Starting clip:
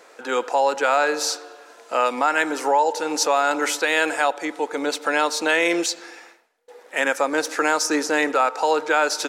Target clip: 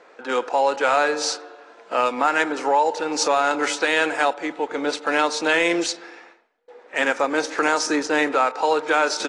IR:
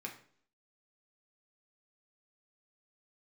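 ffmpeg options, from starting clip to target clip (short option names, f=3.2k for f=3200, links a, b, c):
-af "adynamicsmooth=sensitivity=3:basefreq=3.7k" -ar 22050 -c:a aac -b:a 32k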